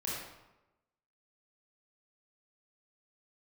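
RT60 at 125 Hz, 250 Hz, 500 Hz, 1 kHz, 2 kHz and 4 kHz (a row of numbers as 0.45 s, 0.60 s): 1.0 s, 1.0 s, 1.0 s, 1.0 s, 0.80 s, 0.65 s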